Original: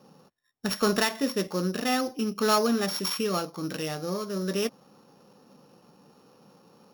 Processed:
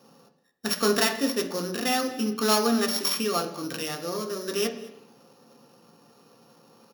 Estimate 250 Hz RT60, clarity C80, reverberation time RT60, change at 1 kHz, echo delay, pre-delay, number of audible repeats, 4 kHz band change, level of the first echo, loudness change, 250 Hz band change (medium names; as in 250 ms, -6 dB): 0.85 s, 12.5 dB, 0.85 s, +1.0 dB, 219 ms, 3 ms, 1, +3.5 dB, -22.0 dB, +1.5 dB, +0.5 dB